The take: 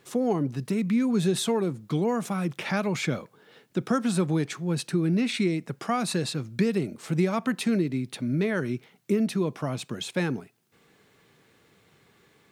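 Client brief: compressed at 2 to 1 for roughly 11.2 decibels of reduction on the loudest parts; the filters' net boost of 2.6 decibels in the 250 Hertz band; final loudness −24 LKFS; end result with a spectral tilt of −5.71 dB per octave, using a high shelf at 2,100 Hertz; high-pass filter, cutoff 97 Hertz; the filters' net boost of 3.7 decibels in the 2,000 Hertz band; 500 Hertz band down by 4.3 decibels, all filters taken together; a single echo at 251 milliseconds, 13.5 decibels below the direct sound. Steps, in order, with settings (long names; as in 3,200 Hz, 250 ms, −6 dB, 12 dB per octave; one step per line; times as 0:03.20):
high-pass filter 97 Hz
parametric band 250 Hz +5.5 dB
parametric band 500 Hz −8.5 dB
parametric band 2,000 Hz +8.5 dB
high-shelf EQ 2,100 Hz −6 dB
downward compressor 2 to 1, threshold −39 dBFS
single-tap delay 251 ms −13.5 dB
level +11.5 dB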